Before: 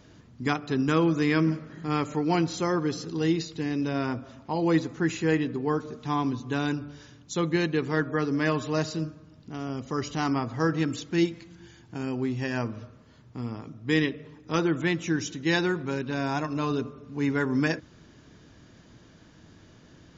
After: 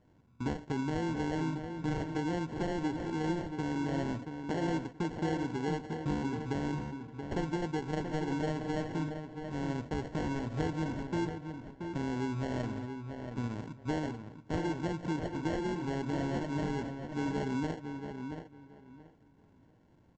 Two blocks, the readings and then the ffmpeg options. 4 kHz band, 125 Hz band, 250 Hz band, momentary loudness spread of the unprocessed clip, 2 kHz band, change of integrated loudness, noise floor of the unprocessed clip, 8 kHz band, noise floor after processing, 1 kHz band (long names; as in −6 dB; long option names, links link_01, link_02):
−11.0 dB, −5.5 dB, −7.0 dB, 10 LU, −11.0 dB, −7.5 dB, −54 dBFS, can't be measured, −63 dBFS, −6.0 dB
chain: -filter_complex "[0:a]aresample=16000,acrusher=samples=13:mix=1:aa=0.000001,aresample=44100,highshelf=frequency=2400:gain=-11,acompressor=threshold=-31dB:ratio=5,agate=range=-12dB:threshold=-41dB:ratio=16:detection=peak,asplit=2[link_01][link_02];[link_02]adelay=679,lowpass=frequency=3400:poles=1,volume=-7dB,asplit=2[link_03][link_04];[link_04]adelay=679,lowpass=frequency=3400:poles=1,volume=0.21,asplit=2[link_05][link_06];[link_06]adelay=679,lowpass=frequency=3400:poles=1,volume=0.21[link_07];[link_01][link_03][link_05][link_07]amix=inputs=4:normalize=0"